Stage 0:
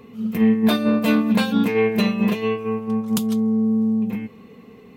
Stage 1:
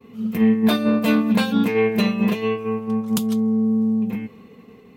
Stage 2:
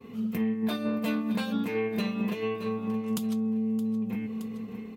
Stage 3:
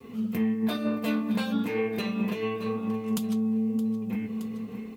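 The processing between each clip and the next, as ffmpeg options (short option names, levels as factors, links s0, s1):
-af "agate=range=0.0224:threshold=0.00794:ratio=3:detection=peak"
-af "aecho=1:1:620|1240|1860:0.158|0.0618|0.0241,acompressor=threshold=0.0316:ratio=3"
-af "flanger=delay=2.4:depth=7.7:regen=-64:speed=1:shape=sinusoidal,acrusher=bits=11:mix=0:aa=0.000001,volume=1.88"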